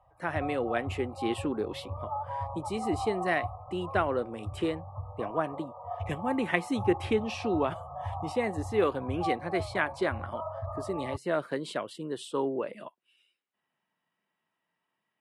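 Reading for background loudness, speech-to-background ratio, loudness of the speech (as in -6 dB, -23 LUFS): -38.5 LUFS, 6.0 dB, -32.5 LUFS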